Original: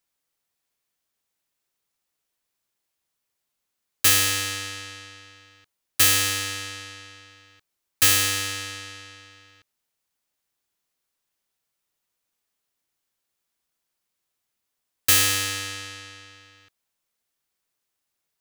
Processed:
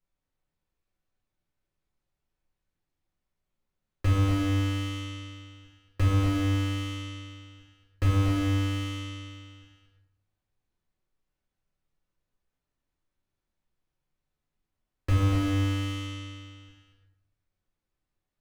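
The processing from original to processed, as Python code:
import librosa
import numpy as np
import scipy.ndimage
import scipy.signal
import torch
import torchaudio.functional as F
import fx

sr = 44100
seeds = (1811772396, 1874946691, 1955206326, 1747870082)

y = fx.riaa(x, sr, side='playback')
y = fx.leveller(y, sr, passes=1)
y = fx.echo_multitap(y, sr, ms=(238, 345), db=(-6.5, -13.5))
y = fx.room_shoebox(y, sr, seeds[0], volume_m3=120.0, walls='mixed', distance_m=1.1)
y = fx.slew_limit(y, sr, full_power_hz=69.0)
y = F.gain(torch.from_numpy(y), -6.0).numpy()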